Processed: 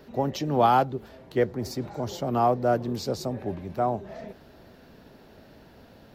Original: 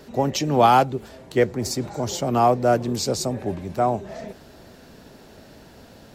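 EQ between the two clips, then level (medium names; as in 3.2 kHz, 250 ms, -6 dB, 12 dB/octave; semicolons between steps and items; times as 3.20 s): peaking EQ 7.9 kHz -12 dB 1 oct; dynamic bell 2.4 kHz, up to -5 dB, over -47 dBFS, Q 2.9; -4.5 dB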